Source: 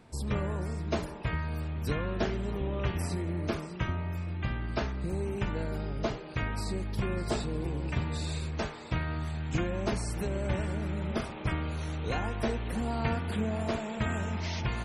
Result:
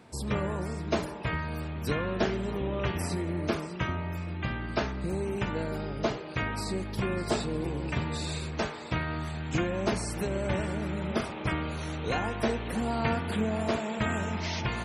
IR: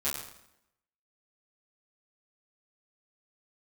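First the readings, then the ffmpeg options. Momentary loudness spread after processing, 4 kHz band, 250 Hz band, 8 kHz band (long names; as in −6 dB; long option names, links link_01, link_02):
4 LU, +3.5 dB, +2.5 dB, +3.5 dB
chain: -filter_complex "[0:a]highpass=frequency=140:poles=1,asplit=2[link_01][link_02];[1:a]atrim=start_sample=2205,asetrate=39249,aresample=44100,lowpass=6300[link_03];[link_02][link_03]afir=irnorm=-1:irlink=0,volume=-26.5dB[link_04];[link_01][link_04]amix=inputs=2:normalize=0,volume=3.5dB"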